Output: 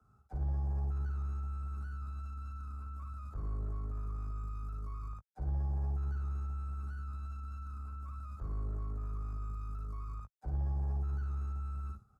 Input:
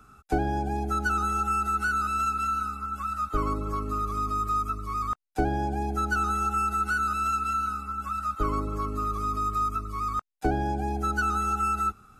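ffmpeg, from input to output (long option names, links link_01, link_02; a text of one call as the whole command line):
ffmpeg -i in.wav -filter_complex "[0:a]acrossover=split=220|3000[link_01][link_02][link_03];[link_02]acompressor=threshold=-37dB:ratio=4[link_04];[link_01][link_04][link_03]amix=inputs=3:normalize=0,aeval=exprs='(tanh(35.5*val(0)+0.75)-tanh(0.75))/35.5':channel_layout=same,highpass=55,asplit=2[link_05][link_06];[link_06]aecho=0:1:55|73:0.562|0.15[link_07];[link_05][link_07]amix=inputs=2:normalize=0,acrossover=split=3800[link_08][link_09];[link_09]acompressor=threshold=-57dB:ratio=4:attack=1:release=60[link_10];[link_08][link_10]amix=inputs=2:normalize=0,highshelf=frequency=11000:gain=-4,acrossover=split=110[link_11][link_12];[link_12]alimiter=level_in=15dB:limit=-24dB:level=0:latency=1:release=16,volume=-15dB[link_13];[link_11][link_13]amix=inputs=2:normalize=0,agate=range=-7dB:threshold=-51dB:ratio=16:detection=peak,firequalizer=gain_entry='entry(130,0);entry(280,-12);entry(560,-5);entry(2800,-26);entry(4500,-16)':delay=0.05:min_phase=1,volume=3.5dB" out.wav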